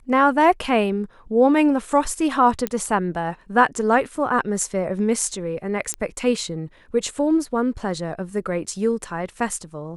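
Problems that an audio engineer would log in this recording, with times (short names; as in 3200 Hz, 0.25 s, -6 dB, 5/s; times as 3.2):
2.67 pop -8 dBFS
5.94 pop -11 dBFS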